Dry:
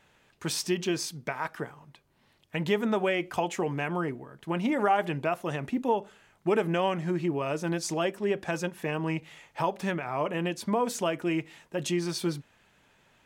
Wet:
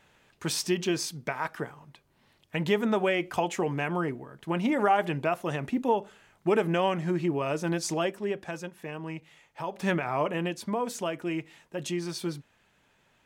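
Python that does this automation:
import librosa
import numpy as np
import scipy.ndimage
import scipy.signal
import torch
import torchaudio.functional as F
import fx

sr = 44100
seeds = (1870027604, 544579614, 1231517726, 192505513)

y = fx.gain(x, sr, db=fx.line((7.94, 1.0), (8.65, -7.0), (9.65, -7.0), (9.92, 4.5), (10.72, -3.0)))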